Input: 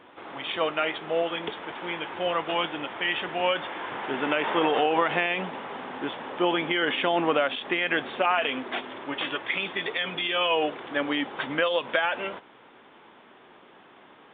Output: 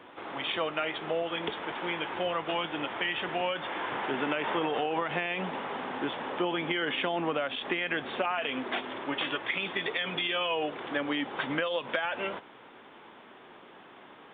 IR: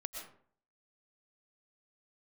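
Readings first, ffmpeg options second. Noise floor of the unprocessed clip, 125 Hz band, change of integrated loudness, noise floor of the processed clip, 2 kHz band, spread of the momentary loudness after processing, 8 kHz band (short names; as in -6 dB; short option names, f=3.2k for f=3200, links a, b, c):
-53 dBFS, -1.0 dB, -4.5 dB, -52 dBFS, -4.0 dB, 9 LU, n/a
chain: -filter_complex "[0:a]acrossover=split=160[a][b];[b]acompressor=threshold=-29dB:ratio=4[c];[a][c]amix=inputs=2:normalize=0,volume=1dB"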